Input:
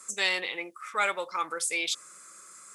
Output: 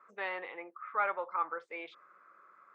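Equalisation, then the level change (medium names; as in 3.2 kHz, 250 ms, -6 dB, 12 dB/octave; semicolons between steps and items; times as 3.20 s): band-pass filter 1.1 kHz, Q 0.78; low-pass 1.5 kHz 12 dB/octave; distance through air 75 m; 0.0 dB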